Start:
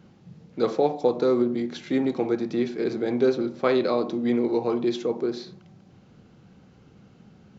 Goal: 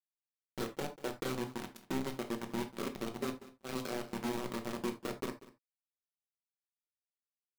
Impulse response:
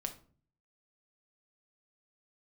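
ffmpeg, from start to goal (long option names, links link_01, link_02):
-filter_complex "[0:a]asettb=1/sr,asplit=3[link_01][link_02][link_03];[link_01]atrim=end=4.384[link_04];[link_02]atrim=start=4.38:end=4.83,asetpts=PTS-STARTPTS,afade=type=in:duration=0.004:curve=qsin,afade=type=out:start_time=0.446:duration=0.004:curve=qsin,equalizer=frequency=1900:width_type=o:width=2.6:gain=-9.5[link_05];[link_03]atrim=start=4.826[link_06];[link_04][link_05]acrossfade=duration=0.004:curve1=hsin:curve2=qsin[link_07];[link_07][link_06]acrossfade=duration=0.004:curve1=qsin:curve2=hsin,acompressor=threshold=-33dB:ratio=5,acrusher=bits=4:mix=0:aa=0.000001,adynamicequalizer=threshold=0.00501:dfrequency=250:dqfactor=1.1:tfrequency=250:tqfactor=1.1:attack=5:release=100:ratio=0.375:range=3:mode=boostabove:tftype=bell,asettb=1/sr,asplit=3[link_08][link_09][link_10];[link_08]atrim=end=3.094[link_11];[link_09]atrim=start=3.09:end=3.69,asetpts=PTS-STARTPTS,afade=type=in:duration=0.004:curve=qsin,afade=type=out:start_time=0.596:duration=0.004:curve=qsin,agate=range=-31dB:threshold=-29dB:ratio=16:detection=peak[link_12];[link_10]atrim=start=3.686[link_13];[link_11][link_12]acrossfade=duration=0.004:curve1=hsin:curve2=qsin[link_14];[link_14][link_13]acrossfade=duration=0.004:curve1=qsin:curve2=hsin,aecho=1:1:191:0.126[link_15];[1:a]atrim=start_sample=2205,afade=type=out:start_time=0.14:duration=0.01,atrim=end_sample=6615[link_16];[link_15][link_16]afir=irnorm=-1:irlink=0,volume=-6dB"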